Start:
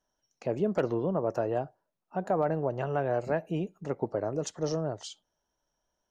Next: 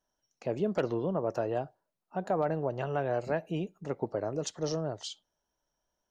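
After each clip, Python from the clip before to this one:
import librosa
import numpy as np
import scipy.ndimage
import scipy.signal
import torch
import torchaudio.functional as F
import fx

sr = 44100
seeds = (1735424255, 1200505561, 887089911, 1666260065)

y = fx.dynamic_eq(x, sr, hz=3800.0, q=1.1, threshold_db=-56.0, ratio=4.0, max_db=6)
y = y * librosa.db_to_amplitude(-2.0)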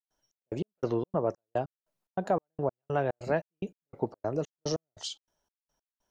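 y = fx.step_gate(x, sr, bpm=145, pattern='.xx..x..xx', floor_db=-60.0, edge_ms=4.5)
y = y * librosa.db_to_amplitude(3.0)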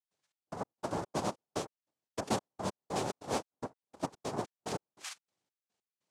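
y = fx.noise_vocoder(x, sr, seeds[0], bands=2)
y = y * librosa.db_to_amplitude(-6.0)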